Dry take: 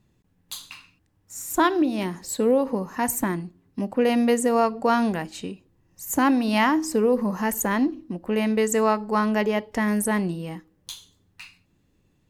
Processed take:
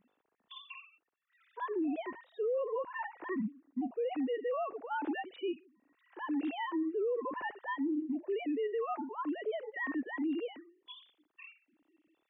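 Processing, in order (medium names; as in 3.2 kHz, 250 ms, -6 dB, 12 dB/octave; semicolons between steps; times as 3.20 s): formants replaced by sine waves; reverse; compression 4:1, threshold -28 dBFS, peak gain reduction 15 dB; reverse; peak limiter -30.5 dBFS, peak gain reduction 11.5 dB; harmonic-percussive split percussive -12 dB; trim +2.5 dB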